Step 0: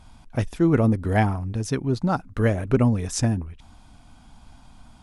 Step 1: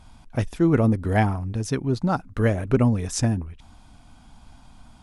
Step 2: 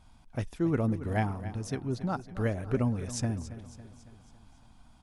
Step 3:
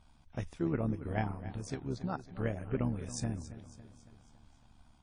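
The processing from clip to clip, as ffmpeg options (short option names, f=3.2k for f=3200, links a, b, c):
-af anull
-af "aecho=1:1:277|554|831|1108|1385:0.2|0.106|0.056|0.0297|0.0157,volume=-9dB"
-af "tremolo=f=72:d=0.667,volume=-2dB" -ar 22050 -c:a wmav2 -b:a 32k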